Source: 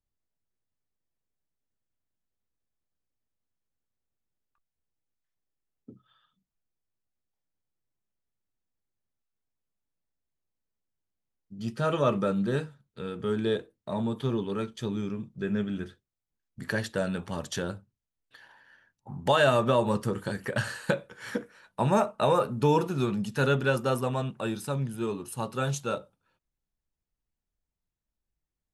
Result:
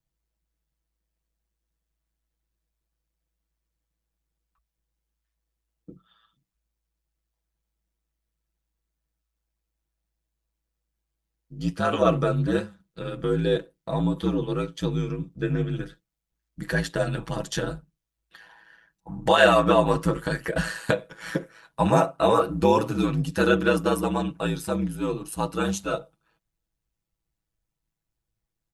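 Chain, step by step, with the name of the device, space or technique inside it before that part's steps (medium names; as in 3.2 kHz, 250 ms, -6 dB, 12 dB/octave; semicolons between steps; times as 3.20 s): 19.38–20.47 s: peaking EQ 1.7 kHz +3.5 dB 1.9 oct; ring-modulated robot voice (ring modulator 55 Hz; comb 6.1 ms, depth 65%); trim +5.5 dB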